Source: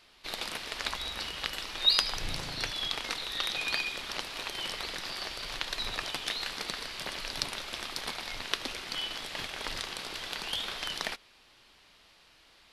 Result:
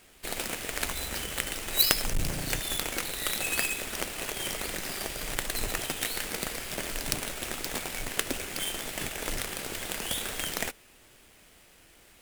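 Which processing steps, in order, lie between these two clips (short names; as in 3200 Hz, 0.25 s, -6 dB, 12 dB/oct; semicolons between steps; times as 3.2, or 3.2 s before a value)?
half-waves squared off; graphic EQ 1000/4000/8000 Hz -8/-8/+4 dB; speed mistake 24 fps film run at 25 fps; gain +2 dB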